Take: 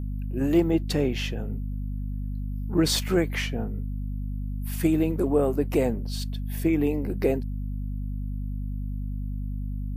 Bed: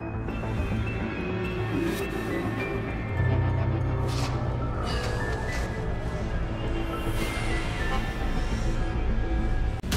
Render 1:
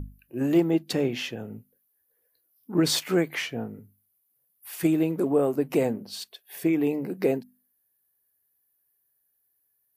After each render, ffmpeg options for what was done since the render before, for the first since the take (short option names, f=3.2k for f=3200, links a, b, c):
-af "bandreject=f=50:t=h:w=6,bandreject=f=100:t=h:w=6,bandreject=f=150:t=h:w=6,bandreject=f=200:t=h:w=6,bandreject=f=250:t=h:w=6"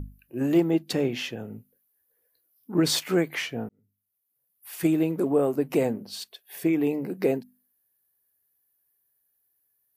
-filter_complex "[0:a]asplit=2[a][b];[a]atrim=end=3.69,asetpts=PTS-STARTPTS,afade=t=out:st=3.686:d=0.004:c=hsin[c];[b]atrim=start=3.69,asetpts=PTS-STARTPTS,afade=t=in:d=1.18[d];[c][d]concat=n=2:v=0:a=1"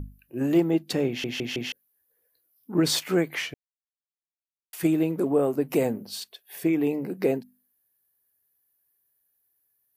-filter_complex "[0:a]asettb=1/sr,asplit=3[a][b][c];[a]atrim=end=5.684[d];[b]atrim=start=5.68:end=6.2,asetpts=PTS-STARTPTS,afade=t=in:d=0.004:c=qsin,afade=t=out:st=0.516:d=0.004:c=qsin,highshelf=f=8.5k:g=7[e];[c]atrim=start=6.196[f];[d][e]acrossfade=d=0.004:c1=hsin:c2=qsin[g];[g][f]acrossfade=d=0.004:c1=qsin:c2=hsin,asplit=7[h][i][j][k][l][m][n];[h]atrim=end=1.242[o];[i]atrim=start=1.078:end=1.242[p];[j]atrim=start=1.078:end=1.242[q];[k]atrim=start=1.078:end=1.242[r];[l]atrim=start=1.718:end=3.54,asetpts=PTS-STARTPTS,afade=t=out:st=1.818:d=0.004:c=hsin[s];[m]atrim=start=3.54:end=4.73,asetpts=PTS-STARTPTS,volume=0[t];[n]atrim=start=4.73,asetpts=PTS-STARTPTS,afade=t=in:d=0.004:c=hsin[u];[o][p]acrossfade=d=0.004:c1=hsin:c2=hsin[v];[v][q]acrossfade=d=0.004:c1=hsin:c2=hsin[w];[w][r]acrossfade=d=0.004:c1=hsin:c2=hsin[x];[s][t][u]concat=n=3:v=0:a=1[y];[x][y]acrossfade=d=0.004:c1=hsin:c2=hsin"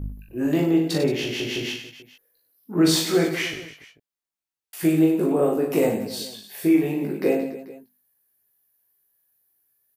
-filter_complex "[0:a]asplit=2[a][b];[b]adelay=19,volume=-3dB[c];[a][c]amix=inputs=2:normalize=0,aecho=1:1:40|96|174.4|284.2|437.8:0.631|0.398|0.251|0.158|0.1"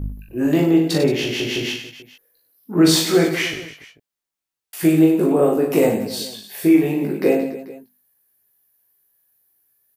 -af "volume=4.5dB"